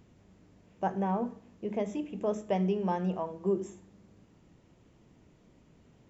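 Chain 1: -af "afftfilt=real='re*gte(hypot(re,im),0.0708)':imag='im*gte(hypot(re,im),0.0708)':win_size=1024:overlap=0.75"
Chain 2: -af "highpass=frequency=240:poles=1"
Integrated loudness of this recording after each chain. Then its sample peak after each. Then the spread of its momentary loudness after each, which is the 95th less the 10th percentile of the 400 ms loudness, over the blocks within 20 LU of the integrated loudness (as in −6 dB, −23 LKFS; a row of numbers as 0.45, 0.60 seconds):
−33.0, −35.0 LKFS; −18.5, −17.5 dBFS; 8, 7 LU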